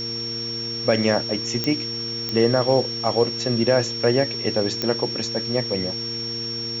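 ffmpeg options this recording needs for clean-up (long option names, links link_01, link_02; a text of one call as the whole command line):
ffmpeg -i in.wav -af "adeclick=threshold=4,bandreject=frequency=115.9:width_type=h:width=4,bandreject=frequency=231.8:width_type=h:width=4,bandreject=frequency=347.7:width_type=h:width=4,bandreject=frequency=463.6:width_type=h:width=4,bandreject=frequency=5500:width=30,afwtdn=0.011" out.wav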